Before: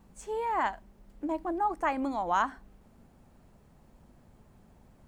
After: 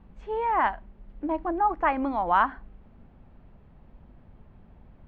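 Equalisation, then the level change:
low-pass filter 3,300 Hz 24 dB per octave
low-shelf EQ 97 Hz +8.5 dB
dynamic equaliser 1,200 Hz, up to +4 dB, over −41 dBFS, Q 0.72
+2.0 dB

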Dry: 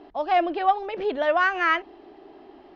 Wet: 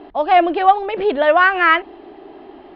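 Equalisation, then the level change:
low-pass filter 4,100 Hz 24 dB per octave
+8.5 dB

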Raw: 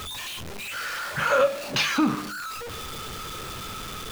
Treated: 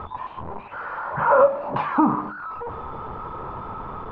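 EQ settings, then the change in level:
low-pass with resonance 960 Hz, resonance Q 4.9
high-frequency loss of the air 120 metres
+2.0 dB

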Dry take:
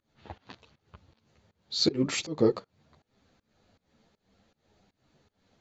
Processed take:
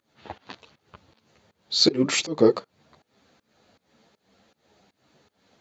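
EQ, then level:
high-pass filter 250 Hz 6 dB per octave
+7.5 dB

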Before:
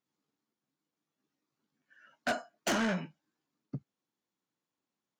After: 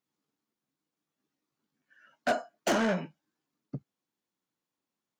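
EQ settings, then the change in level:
dynamic equaliser 520 Hz, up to +7 dB, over −46 dBFS, Q 0.78
0.0 dB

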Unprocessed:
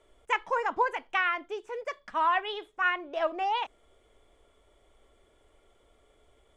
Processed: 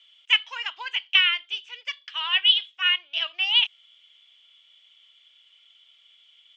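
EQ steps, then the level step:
high-pass with resonance 3,000 Hz, resonance Q 6.7
low-pass filter 5,700 Hz 24 dB per octave
+7.0 dB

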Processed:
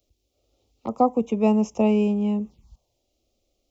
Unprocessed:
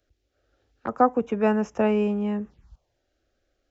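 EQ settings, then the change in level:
Butterworth band-reject 1,600 Hz, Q 1.2
parametric band 220 Hz +5 dB 0.27 octaves
high-shelf EQ 4,900 Hz +10.5 dB
0.0 dB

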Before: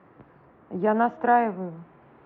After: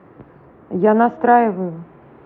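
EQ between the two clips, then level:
low-shelf EQ 200 Hz +5.5 dB
parametric band 400 Hz +4 dB 1.2 octaves
+5.5 dB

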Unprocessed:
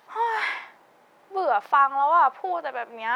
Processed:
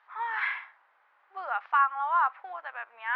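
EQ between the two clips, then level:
dynamic equaliser 2,600 Hz, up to +4 dB, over −35 dBFS, Q 1.2
four-pole ladder band-pass 1,700 Hz, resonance 30%
high-frequency loss of the air 140 metres
+6.5 dB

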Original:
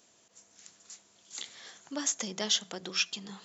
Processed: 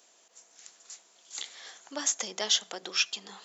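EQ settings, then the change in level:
high-pass filter 410 Hz 12 dB per octave
parametric band 770 Hz +2.5 dB 0.22 octaves
+2.5 dB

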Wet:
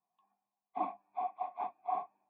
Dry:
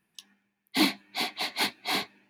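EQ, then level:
formant resonators in series a
+4.5 dB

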